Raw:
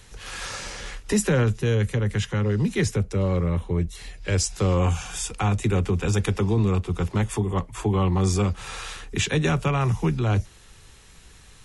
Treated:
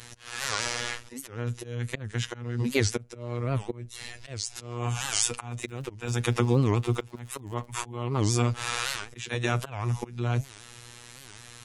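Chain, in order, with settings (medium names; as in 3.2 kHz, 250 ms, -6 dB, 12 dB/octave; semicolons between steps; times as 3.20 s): high-pass 58 Hz 12 dB/octave; bass shelf 310 Hz -3 dB; compression 5:1, threshold -25 dBFS, peak gain reduction 7 dB; slow attack 463 ms; 5.52–7.74 s: crackle 35 per s -44 dBFS; robot voice 120 Hz; warped record 78 rpm, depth 250 cents; trim +7.5 dB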